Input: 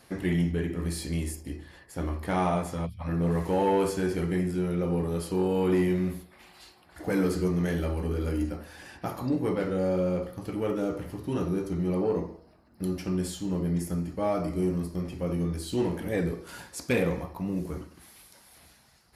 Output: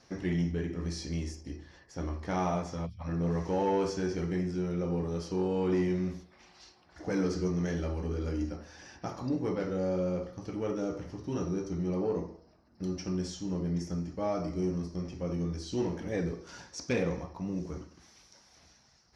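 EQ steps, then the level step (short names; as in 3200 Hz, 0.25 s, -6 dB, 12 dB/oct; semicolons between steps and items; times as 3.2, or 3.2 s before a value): synth low-pass 5800 Hz, resonance Q 8.4; high shelf 3300 Hz -10 dB; -4.0 dB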